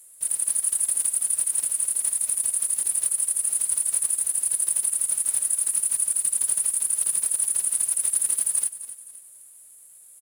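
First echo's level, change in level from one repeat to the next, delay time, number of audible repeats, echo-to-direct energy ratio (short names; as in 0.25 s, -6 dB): -14.0 dB, -8.0 dB, 0.259 s, 3, -13.0 dB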